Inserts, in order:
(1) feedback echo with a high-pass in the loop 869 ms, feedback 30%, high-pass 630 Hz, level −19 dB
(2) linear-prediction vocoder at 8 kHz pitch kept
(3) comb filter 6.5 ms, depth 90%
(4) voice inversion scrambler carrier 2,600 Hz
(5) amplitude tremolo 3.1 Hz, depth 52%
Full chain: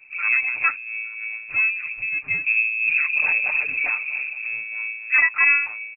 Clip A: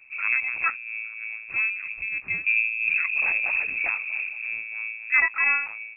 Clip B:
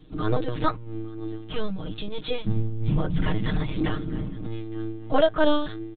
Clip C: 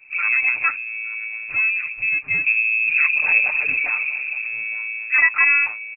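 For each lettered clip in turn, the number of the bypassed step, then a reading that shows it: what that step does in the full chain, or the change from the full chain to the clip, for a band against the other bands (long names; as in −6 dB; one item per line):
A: 3, change in crest factor +2.0 dB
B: 4, change in integrated loudness −8.0 LU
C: 5, change in integrated loudness +2.0 LU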